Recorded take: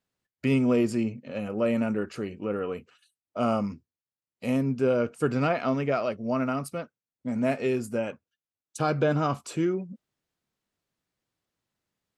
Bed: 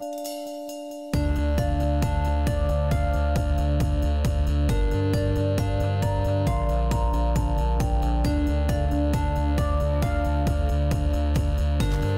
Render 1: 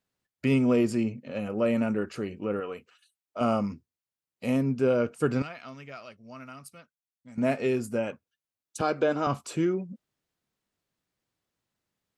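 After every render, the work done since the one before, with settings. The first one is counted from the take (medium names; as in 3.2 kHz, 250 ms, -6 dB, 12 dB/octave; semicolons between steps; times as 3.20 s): 2.60–3.41 s: bass shelf 380 Hz -10.5 dB; 5.42–7.38 s: amplifier tone stack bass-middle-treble 5-5-5; 8.81–9.27 s: Chebyshev band-pass 320–8900 Hz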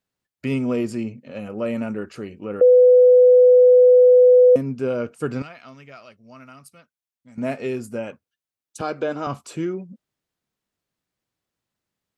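2.61–4.56 s: bleep 499 Hz -8 dBFS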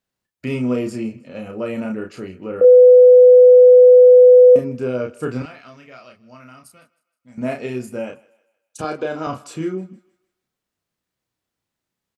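doubling 32 ms -4 dB; thinning echo 157 ms, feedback 43%, level -21.5 dB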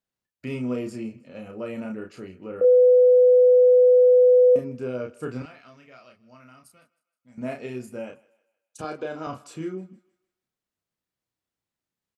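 trim -7.5 dB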